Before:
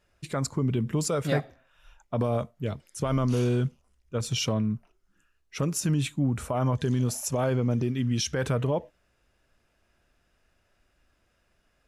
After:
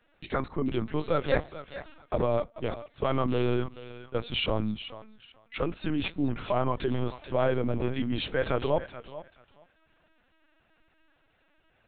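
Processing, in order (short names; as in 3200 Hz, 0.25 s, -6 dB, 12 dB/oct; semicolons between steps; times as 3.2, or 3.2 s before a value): bell 130 Hz -11.5 dB 1.3 oct; thinning echo 0.432 s, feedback 21%, high-pass 690 Hz, level -11 dB; LPC vocoder at 8 kHz pitch kept; gain +3 dB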